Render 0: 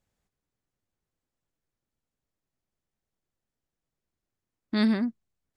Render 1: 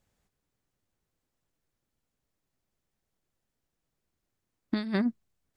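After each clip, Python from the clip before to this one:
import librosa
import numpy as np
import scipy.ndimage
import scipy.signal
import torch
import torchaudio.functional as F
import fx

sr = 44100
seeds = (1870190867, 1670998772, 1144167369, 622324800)

y = fx.over_compress(x, sr, threshold_db=-27.0, ratio=-0.5)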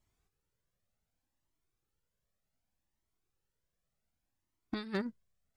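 y = np.clip(10.0 ** (20.5 / 20.0) * x, -1.0, 1.0) / 10.0 ** (20.5 / 20.0)
y = fx.comb_cascade(y, sr, direction='rising', hz=0.66)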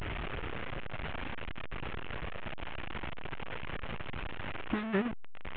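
y = fx.delta_mod(x, sr, bps=16000, step_db=-35.0)
y = y * 10.0 ** (4.5 / 20.0)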